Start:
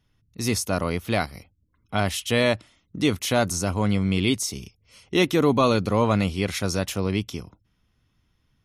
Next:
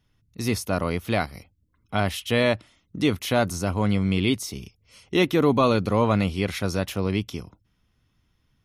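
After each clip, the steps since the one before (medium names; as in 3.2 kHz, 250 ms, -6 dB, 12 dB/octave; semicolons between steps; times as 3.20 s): dynamic bell 7.4 kHz, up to -8 dB, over -45 dBFS, Q 1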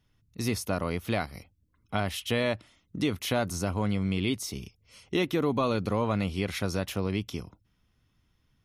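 compression 2.5:1, threshold -23 dBFS, peak gain reduction 6 dB; trim -2 dB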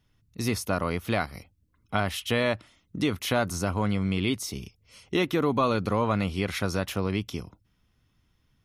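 dynamic bell 1.3 kHz, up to +4 dB, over -44 dBFS, Q 1.3; trim +1.5 dB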